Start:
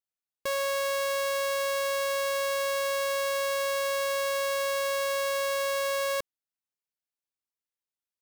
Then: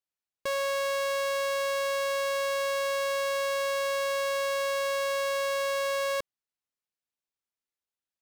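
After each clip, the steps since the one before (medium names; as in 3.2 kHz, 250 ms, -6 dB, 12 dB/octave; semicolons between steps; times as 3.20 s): treble shelf 10 kHz -9 dB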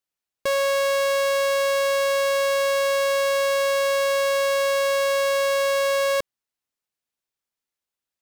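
waveshaping leveller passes 1; trim +6.5 dB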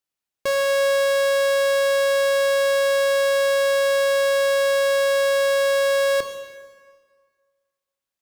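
plate-style reverb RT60 1.7 s, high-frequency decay 0.8×, pre-delay 0 ms, DRR 7 dB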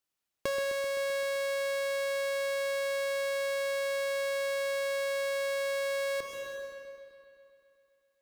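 compression 5:1, threshold -32 dBFS, peak gain reduction 12 dB; bucket-brigade echo 129 ms, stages 4096, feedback 72%, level -9.5 dB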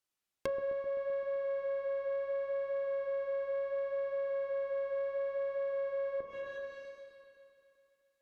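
flange 0.7 Hz, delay 8.3 ms, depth 6.3 ms, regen -50%; low-pass that closes with the level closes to 870 Hz, closed at -36 dBFS; trim +2 dB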